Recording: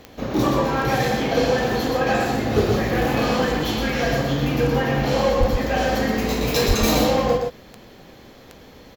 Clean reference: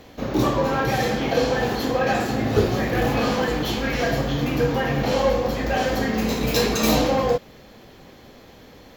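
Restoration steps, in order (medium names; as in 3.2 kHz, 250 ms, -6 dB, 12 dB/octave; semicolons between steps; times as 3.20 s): clip repair -9.5 dBFS; de-click; 5.39–5.51 s: high-pass 140 Hz 24 dB/octave; 6.67–6.79 s: high-pass 140 Hz 24 dB/octave; inverse comb 121 ms -4.5 dB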